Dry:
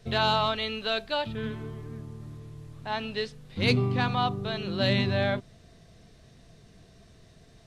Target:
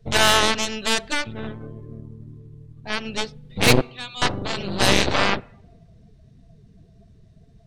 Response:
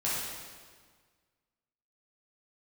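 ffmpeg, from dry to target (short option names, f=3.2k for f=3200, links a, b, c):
-filter_complex "[0:a]asettb=1/sr,asplit=3[a][b][c];[a]atrim=end=3.814[d];[b]atrim=start=3.81:end=4.22,asetpts=PTS-STARTPTS,afade=t=in:d=0.004:c=qsin,afade=t=out:st=0.406:d=0.004:c=qsin,bandpass=f=3.5k:t=q:w=2.2:csg=0[e];[c]atrim=start=4.216[f];[d][e]acrossfade=d=0.004:c1=hsin:c2=qsin[g];[g][f]acrossfade=d=0.004:c1=qsin:c2=hsin,aeval=exprs='0.282*(cos(1*acos(clip(val(0)/0.282,-1,1)))-cos(1*PI/2))+0.0708*(cos(7*acos(clip(val(0)/0.282,-1,1)))-cos(7*PI/2))+0.0316*(cos(8*acos(clip(val(0)/0.282,-1,1)))-cos(8*PI/2))':c=same,asplit=2[h][i];[1:a]atrim=start_sample=2205,lowpass=5.2k[j];[i][j]afir=irnorm=-1:irlink=0,volume=-30.5dB[k];[h][k]amix=inputs=2:normalize=0,asettb=1/sr,asplit=3[l][m][n];[l]atrim=end=1.124[o];[m]atrim=start=1.12:end=3.06,asetpts=PTS-STARTPTS,afade=t=in:d=0.004:c=qsin,afade=t=out:st=1.936:d=0.004:c=qsin,aeval=exprs='(tanh(10*val(0)+0.75)-tanh(0.75))/10':c=same[p];[n]atrim=start=3.056[q];[o][p]acrossfade=d=0.004:c1=hsin:c2=qsin[r];[r][q]acrossfade=d=0.004:c1=qsin:c2=hsin,afftdn=nr=16:nf=-51,volume=7.5dB"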